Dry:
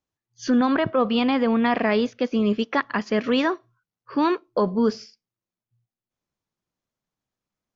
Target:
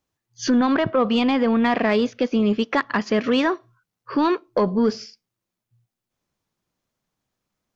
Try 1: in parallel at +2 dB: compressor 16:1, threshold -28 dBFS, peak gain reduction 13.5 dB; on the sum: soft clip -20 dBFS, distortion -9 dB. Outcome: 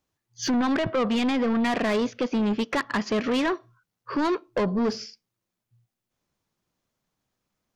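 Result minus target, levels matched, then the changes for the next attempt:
soft clip: distortion +13 dB
change: soft clip -9 dBFS, distortion -23 dB

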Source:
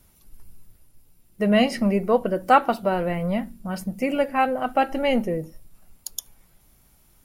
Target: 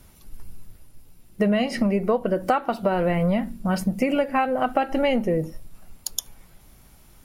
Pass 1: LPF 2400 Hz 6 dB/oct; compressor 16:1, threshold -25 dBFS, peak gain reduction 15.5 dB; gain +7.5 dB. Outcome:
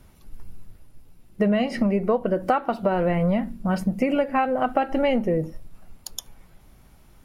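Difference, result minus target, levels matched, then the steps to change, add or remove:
8000 Hz band -7.0 dB
change: LPF 6900 Hz 6 dB/oct

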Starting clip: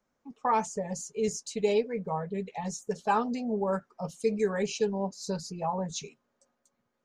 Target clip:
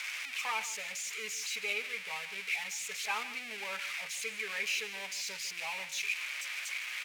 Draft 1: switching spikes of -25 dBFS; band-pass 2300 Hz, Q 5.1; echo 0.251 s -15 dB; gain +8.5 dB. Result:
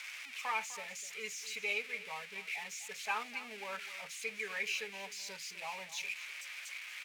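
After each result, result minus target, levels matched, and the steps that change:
echo 0.101 s late; switching spikes: distortion -7 dB
change: echo 0.15 s -15 dB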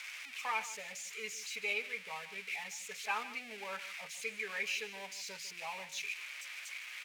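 switching spikes: distortion -7 dB
change: switching spikes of -18 dBFS

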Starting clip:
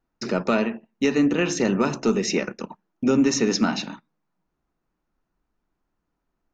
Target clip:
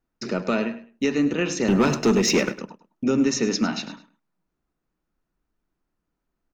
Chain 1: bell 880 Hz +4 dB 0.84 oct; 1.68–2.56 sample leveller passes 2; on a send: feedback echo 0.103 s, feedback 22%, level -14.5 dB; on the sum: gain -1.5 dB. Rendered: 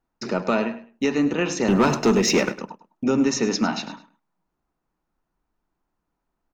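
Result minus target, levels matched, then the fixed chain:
1000 Hz band +3.5 dB
bell 880 Hz -3.5 dB 0.84 oct; 1.68–2.56 sample leveller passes 2; on a send: feedback echo 0.103 s, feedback 22%, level -14.5 dB; on the sum: gain -1.5 dB

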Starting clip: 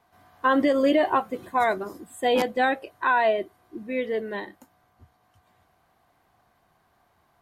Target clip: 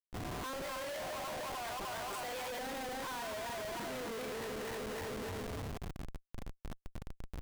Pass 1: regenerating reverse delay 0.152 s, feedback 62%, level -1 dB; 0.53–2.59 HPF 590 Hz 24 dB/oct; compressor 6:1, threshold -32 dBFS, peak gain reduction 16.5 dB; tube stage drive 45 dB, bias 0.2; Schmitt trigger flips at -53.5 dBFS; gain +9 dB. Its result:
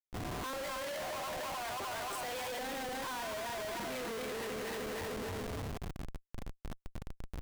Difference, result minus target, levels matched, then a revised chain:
compressor: peak gain reduction -6.5 dB
regenerating reverse delay 0.152 s, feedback 62%, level -1 dB; 0.53–2.59 HPF 590 Hz 24 dB/oct; compressor 6:1, threshold -40 dBFS, peak gain reduction 23 dB; tube stage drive 45 dB, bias 0.2; Schmitt trigger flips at -53.5 dBFS; gain +9 dB

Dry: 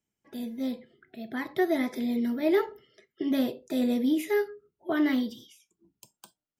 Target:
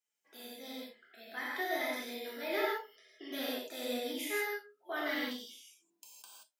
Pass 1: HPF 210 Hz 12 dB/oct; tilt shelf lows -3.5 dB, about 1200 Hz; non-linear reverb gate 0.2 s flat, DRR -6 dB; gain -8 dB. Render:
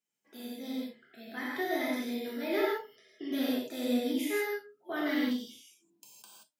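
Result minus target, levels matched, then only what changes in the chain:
250 Hz band +7.0 dB
change: HPF 540 Hz 12 dB/oct

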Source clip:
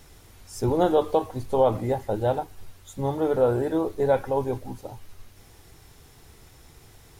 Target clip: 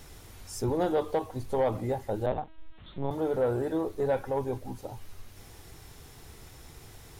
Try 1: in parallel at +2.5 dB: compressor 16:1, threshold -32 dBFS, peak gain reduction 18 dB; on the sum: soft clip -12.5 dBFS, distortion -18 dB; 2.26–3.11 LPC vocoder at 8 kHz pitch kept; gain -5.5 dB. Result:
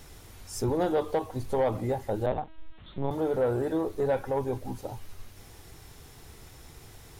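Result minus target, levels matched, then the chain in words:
compressor: peak gain reduction -7.5 dB
in parallel at +2.5 dB: compressor 16:1, threshold -40 dBFS, peak gain reduction 25.5 dB; on the sum: soft clip -12.5 dBFS, distortion -19 dB; 2.26–3.11 LPC vocoder at 8 kHz pitch kept; gain -5.5 dB

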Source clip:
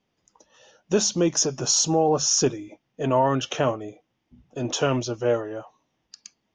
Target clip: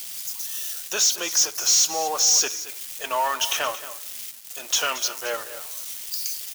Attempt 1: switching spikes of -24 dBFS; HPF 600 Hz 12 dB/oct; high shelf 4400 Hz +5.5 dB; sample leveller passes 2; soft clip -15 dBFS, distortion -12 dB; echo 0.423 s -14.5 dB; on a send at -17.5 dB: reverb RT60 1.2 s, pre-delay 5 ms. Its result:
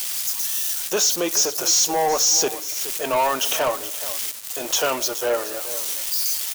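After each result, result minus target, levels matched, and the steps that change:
echo 0.198 s late; 500 Hz band +7.0 dB; switching spikes: distortion +9 dB
change: echo 0.225 s -14.5 dB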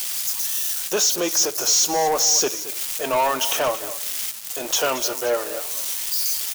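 500 Hz band +7.0 dB; switching spikes: distortion +9 dB
change: HPF 1300 Hz 12 dB/oct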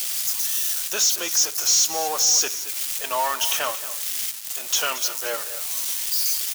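switching spikes: distortion +9 dB
change: switching spikes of -33.5 dBFS

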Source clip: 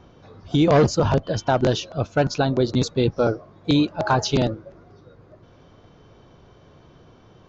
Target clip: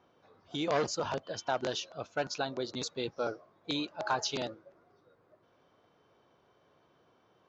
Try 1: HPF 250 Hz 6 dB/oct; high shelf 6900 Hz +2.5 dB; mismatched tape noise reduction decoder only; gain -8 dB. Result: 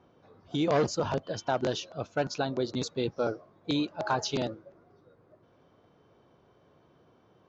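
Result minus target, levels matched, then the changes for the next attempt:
250 Hz band +3.5 dB
change: HPF 820 Hz 6 dB/oct

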